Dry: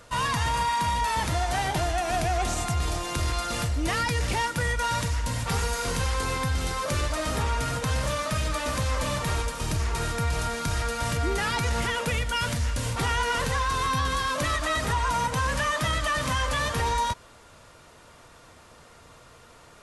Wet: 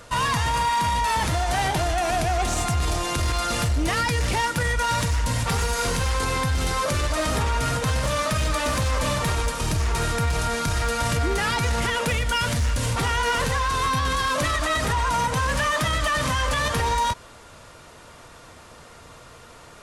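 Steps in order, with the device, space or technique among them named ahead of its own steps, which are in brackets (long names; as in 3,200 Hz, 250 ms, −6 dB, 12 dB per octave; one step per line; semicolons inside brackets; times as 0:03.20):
limiter into clipper (brickwall limiter −20 dBFS, peak gain reduction 4 dB; hard clipping −23 dBFS, distortion −22 dB)
level +5.5 dB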